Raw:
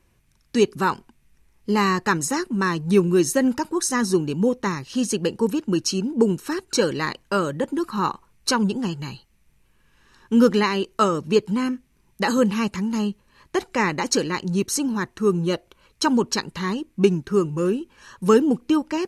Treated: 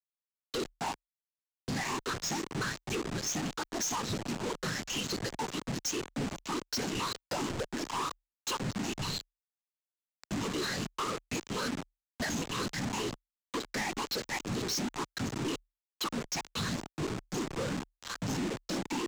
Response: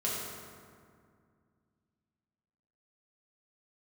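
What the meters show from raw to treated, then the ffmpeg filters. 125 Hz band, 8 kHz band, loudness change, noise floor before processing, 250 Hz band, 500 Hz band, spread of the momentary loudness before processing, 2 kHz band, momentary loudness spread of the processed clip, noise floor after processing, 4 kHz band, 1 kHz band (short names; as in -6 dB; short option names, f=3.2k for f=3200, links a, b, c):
-10.5 dB, -7.5 dB, -12.5 dB, -62 dBFS, -15.5 dB, -17.0 dB, 9 LU, -9.5 dB, 5 LU, under -85 dBFS, -5.5 dB, -11.0 dB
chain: -af "afftfilt=real='re*pow(10,22/40*sin(2*PI*(0.66*log(max(b,1)*sr/1024/100)/log(2)-(2)*(pts-256)/sr)))':imag='im*pow(10,22/40*sin(2*PI*(0.66*log(max(b,1)*sr/1024/100)/log(2)-(2)*(pts-256)/sr)))':win_size=1024:overlap=0.75,lowpass=6.3k,bandreject=f=50:t=h:w=6,bandreject=f=100:t=h:w=6,bandreject=f=150:t=h:w=6,bandreject=f=200:t=h:w=6,bandreject=f=250:t=h:w=6,bandreject=f=300:t=h:w=6,bandreject=f=350:t=h:w=6,bandreject=f=400:t=h:w=6,bandreject=f=450:t=h:w=6,afftfilt=real='hypot(re,im)*cos(2*PI*random(0))':imag='hypot(re,im)*sin(2*PI*random(1))':win_size=512:overlap=0.75,equalizer=f=81:w=1.5:g=-13,acompressor=threshold=-36dB:ratio=8,bass=f=250:g=-1,treble=f=4k:g=7,aresample=16000,acrusher=bits=6:mix=0:aa=0.000001,aresample=44100,asoftclip=type=hard:threshold=-38dB,afreqshift=-38,volume=7.5dB"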